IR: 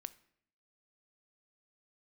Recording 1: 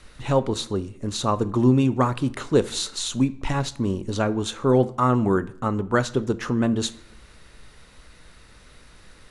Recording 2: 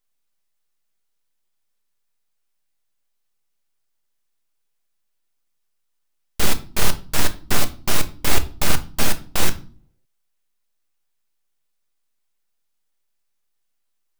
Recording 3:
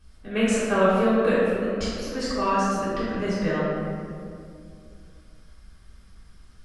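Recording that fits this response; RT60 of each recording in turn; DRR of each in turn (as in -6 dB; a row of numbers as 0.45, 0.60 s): 1; 0.65, 0.45, 2.4 s; 14.0, 8.0, -12.0 dB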